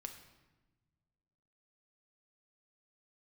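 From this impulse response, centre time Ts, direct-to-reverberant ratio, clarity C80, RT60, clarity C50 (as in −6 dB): 19 ms, 5.0 dB, 10.5 dB, 1.2 s, 8.5 dB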